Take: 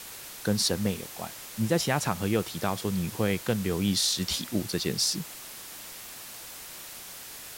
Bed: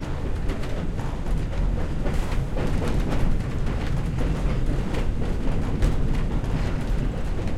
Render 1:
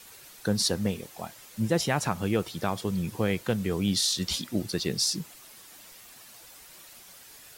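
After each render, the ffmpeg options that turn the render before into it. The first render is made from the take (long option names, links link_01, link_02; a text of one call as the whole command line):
ffmpeg -i in.wav -af "afftdn=noise_reduction=9:noise_floor=-43" out.wav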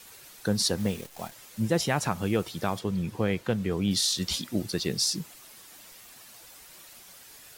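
ffmpeg -i in.wav -filter_complex "[0:a]asettb=1/sr,asplit=3[link_01][link_02][link_03];[link_01]atrim=end=0.784[link_04];[link_02]atrim=start=0.78:end=1.32,asetpts=PTS-STARTPTS,afade=type=in:duration=0.004:curve=qsin,afade=type=out:start_time=0.536:duration=0.004:curve=qsin,acrusher=bits=8:dc=4:mix=0:aa=0.000001[link_05];[link_03]atrim=start=1.316[link_06];[link_04][link_05]acrossfade=duration=0.004:curve1=hsin:curve2=qsin[link_07];[link_07][link_06]acrossfade=duration=0.004:curve1=qsin:curve2=hsin,asettb=1/sr,asplit=3[link_08][link_09][link_10];[link_08]atrim=end=2.794[link_11];[link_09]atrim=start=2.79:end=3.91,asetpts=PTS-STARTPTS,afade=type=in:duration=0.004:curve=qsin,afade=type=out:start_time=1.116:duration=0.004:curve=qsin,highshelf=frequency=5700:gain=-9.5[link_12];[link_10]atrim=start=3.906[link_13];[link_11][link_12]acrossfade=duration=0.004:curve1=hsin:curve2=qsin[link_14];[link_14][link_13]acrossfade=duration=0.004:curve1=qsin:curve2=hsin" out.wav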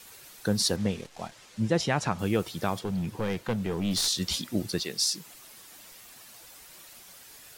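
ffmpeg -i in.wav -filter_complex "[0:a]asettb=1/sr,asplit=3[link_01][link_02][link_03];[link_01]atrim=end=0.764[link_04];[link_02]atrim=start=0.76:end=2.19,asetpts=PTS-STARTPTS,afade=type=in:duration=0.004:curve=qsin,afade=type=out:start_time=1.426:duration=0.004:curve=qsin,lowpass=6600[link_05];[link_03]atrim=start=2.186[link_06];[link_04][link_05]acrossfade=duration=0.004:curve1=hsin:curve2=qsin[link_07];[link_07][link_06]acrossfade=duration=0.004:curve1=qsin:curve2=hsin,asettb=1/sr,asplit=3[link_08][link_09][link_10];[link_08]atrim=end=2.844[link_11];[link_09]atrim=start=2.84:end=4.08,asetpts=PTS-STARTPTS,afade=type=in:duration=0.004:curve=qsin,afade=type=out:start_time=1.236:duration=0.004:curve=qsin,aeval=exprs='clip(val(0),-1,0.0531)':channel_layout=same[link_12];[link_10]atrim=start=4.076[link_13];[link_11][link_12]acrossfade=duration=0.004:curve1=hsin:curve2=qsin[link_14];[link_14][link_13]acrossfade=duration=0.004:curve1=qsin:curve2=hsin,asettb=1/sr,asplit=3[link_15][link_16][link_17];[link_15]atrim=end=4.834[link_18];[link_16]atrim=start=4.83:end=5.26,asetpts=PTS-STARTPTS,afade=type=in:duration=0.004:curve=qsin,afade=type=out:start_time=0.426:duration=0.004:curve=qsin,highpass=frequency=690:poles=1[link_19];[link_17]atrim=start=5.256[link_20];[link_18][link_19]acrossfade=duration=0.004:curve1=hsin:curve2=qsin[link_21];[link_21][link_20]acrossfade=duration=0.004:curve1=qsin:curve2=hsin" out.wav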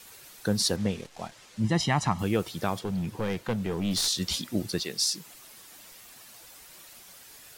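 ffmpeg -i in.wav -filter_complex "[0:a]asettb=1/sr,asplit=3[link_01][link_02][link_03];[link_01]atrim=end=1.644[link_04];[link_02]atrim=start=1.64:end=2.23,asetpts=PTS-STARTPTS,afade=type=in:duration=0.004:curve=qsin,afade=type=out:start_time=0.586:duration=0.004:curve=qsin,aecho=1:1:1:0.65,atrim=end_sample=26019[link_05];[link_03]atrim=start=2.226[link_06];[link_04][link_05]acrossfade=duration=0.004:curve1=hsin:curve2=qsin[link_07];[link_07][link_06]acrossfade=duration=0.004:curve1=qsin:curve2=hsin" out.wav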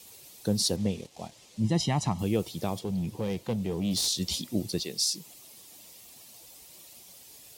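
ffmpeg -i in.wav -af "highpass=48,equalizer=frequency=1500:width=1.4:gain=-14" out.wav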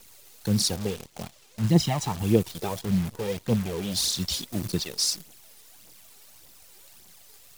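ffmpeg -i in.wav -af "aphaser=in_gain=1:out_gain=1:delay=2.6:decay=0.63:speed=1.7:type=triangular,acrusher=bits=7:dc=4:mix=0:aa=0.000001" out.wav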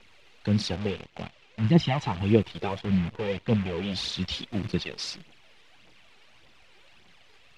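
ffmpeg -i in.wav -af "lowpass=frequency=2700:width_type=q:width=1.7" out.wav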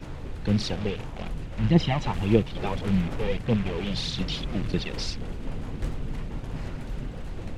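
ffmpeg -i in.wav -i bed.wav -filter_complex "[1:a]volume=-9dB[link_01];[0:a][link_01]amix=inputs=2:normalize=0" out.wav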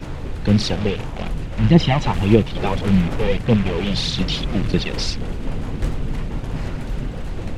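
ffmpeg -i in.wav -af "volume=8dB,alimiter=limit=-1dB:level=0:latency=1" out.wav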